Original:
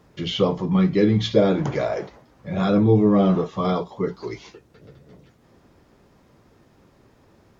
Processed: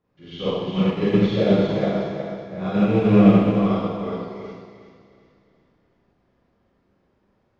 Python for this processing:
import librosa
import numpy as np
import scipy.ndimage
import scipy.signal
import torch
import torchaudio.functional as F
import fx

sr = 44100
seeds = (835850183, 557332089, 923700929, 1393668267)

p1 = fx.rattle_buzz(x, sr, strikes_db=-19.0, level_db=-23.0)
p2 = fx.quant_float(p1, sr, bits=4)
p3 = fx.air_absorb(p2, sr, metres=150.0)
p4 = p3 + fx.echo_feedback(p3, sr, ms=366, feedback_pct=40, wet_db=-5.0, dry=0)
p5 = fx.rev_schroeder(p4, sr, rt60_s=1.7, comb_ms=31, drr_db=-10.0)
p6 = fx.upward_expand(p5, sr, threshold_db=-28.0, expansion=1.5)
y = p6 * librosa.db_to_amplitude(-7.5)